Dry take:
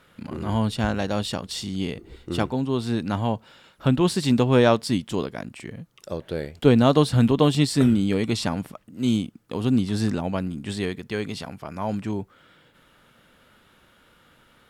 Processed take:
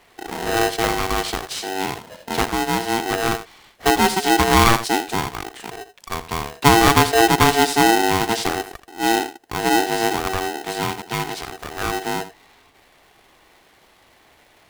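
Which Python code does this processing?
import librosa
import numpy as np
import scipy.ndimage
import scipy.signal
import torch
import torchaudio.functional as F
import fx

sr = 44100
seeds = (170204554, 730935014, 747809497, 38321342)

y = x + 10.0 ** (-13.0 / 20.0) * np.pad(x, (int(81 * sr / 1000.0), 0))[:len(x)]
y = y * np.sign(np.sin(2.0 * np.pi * 570.0 * np.arange(len(y)) / sr))
y = y * 10.0 ** (3.0 / 20.0)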